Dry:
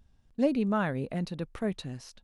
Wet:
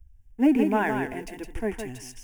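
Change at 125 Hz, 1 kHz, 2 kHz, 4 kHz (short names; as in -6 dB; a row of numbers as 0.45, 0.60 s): -4.0, +7.0, +7.5, 0.0 dB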